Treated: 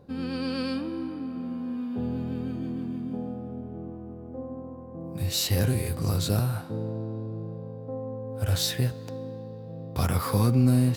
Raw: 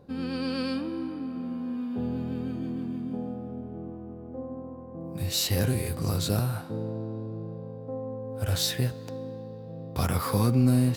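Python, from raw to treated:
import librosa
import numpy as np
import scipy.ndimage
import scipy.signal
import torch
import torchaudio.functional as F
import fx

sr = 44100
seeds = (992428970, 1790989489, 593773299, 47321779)

y = fx.peak_eq(x, sr, hz=97.0, db=2.5, octaves=0.93)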